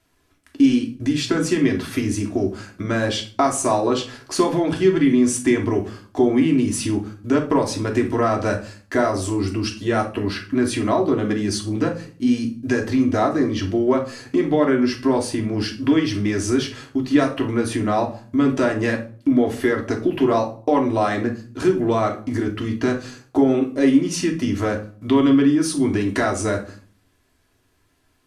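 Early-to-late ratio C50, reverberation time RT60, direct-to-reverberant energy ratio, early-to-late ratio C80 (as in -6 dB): 10.0 dB, 0.45 s, 0.0 dB, 16.0 dB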